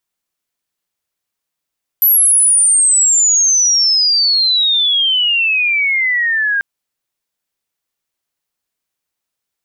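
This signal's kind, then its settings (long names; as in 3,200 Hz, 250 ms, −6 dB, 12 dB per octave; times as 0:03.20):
glide logarithmic 12,000 Hz → 1,600 Hz −7 dBFS → −12.5 dBFS 4.59 s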